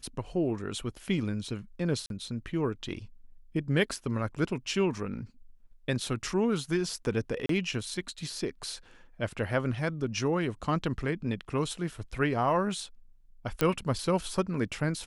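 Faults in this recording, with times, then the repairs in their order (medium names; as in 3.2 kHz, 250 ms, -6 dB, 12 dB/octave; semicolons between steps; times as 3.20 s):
2.06–2.10 s: dropout 42 ms
7.46–7.49 s: dropout 33 ms
13.61 s: pop -11 dBFS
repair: de-click; interpolate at 2.06 s, 42 ms; interpolate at 7.46 s, 33 ms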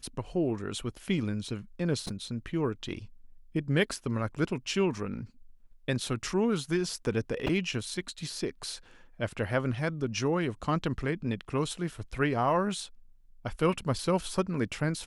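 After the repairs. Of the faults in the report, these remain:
nothing left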